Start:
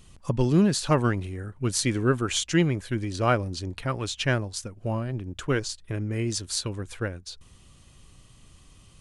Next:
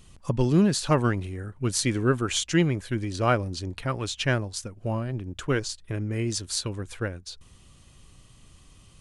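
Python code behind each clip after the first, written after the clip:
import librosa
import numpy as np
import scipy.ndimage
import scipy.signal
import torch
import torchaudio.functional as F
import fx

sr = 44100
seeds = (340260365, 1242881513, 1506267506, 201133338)

y = x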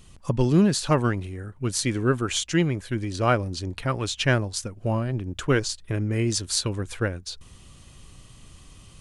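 y = fx.rider(x, sr, range_db=4, speed_s=2.0)
y = y * 10.0 ** (1.0 / 20.0)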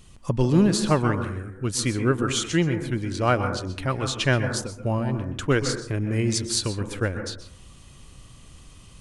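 y = fx.rev_plate(x, sr, seeds[0], rt60_s=0.6, hf_ratio=0.25, predelay_ms=115, drr_db=7.0)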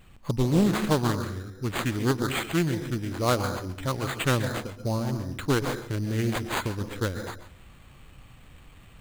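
y = np.repeat(x[::8], 8)[:len(x)]
y = fx.doppler_dist(y, sr, depth_ms=0.54)
y = y * 10.0 ** (-3.0 / 20.0)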